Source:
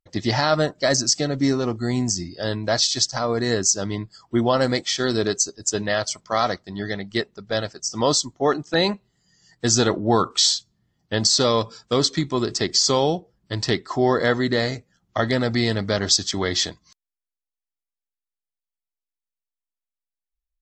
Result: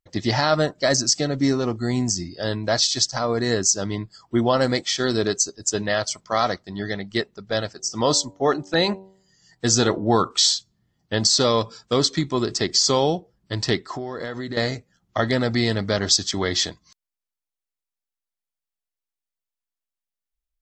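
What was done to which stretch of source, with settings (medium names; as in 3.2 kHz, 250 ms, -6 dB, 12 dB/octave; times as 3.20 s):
7.68–10.18 s: de-hum 95.83 Hz, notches 10
13.83–14.57 s: compression 10:1, threshold -26 dBFS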